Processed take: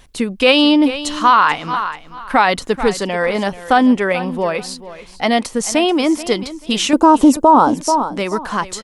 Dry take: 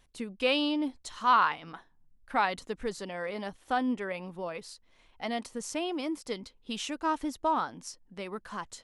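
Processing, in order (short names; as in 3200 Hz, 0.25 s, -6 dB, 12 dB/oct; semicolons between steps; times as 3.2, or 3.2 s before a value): 6.93–7.74 graphic EQ 125/250/500/1000/2000/4000/8000 Hz +3/+10/+9/+9/-11/-4/+8 dB; feedback echo 0.435 s, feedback 23%, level -15.5 dB; maximiser +19 dB; gain -1 dB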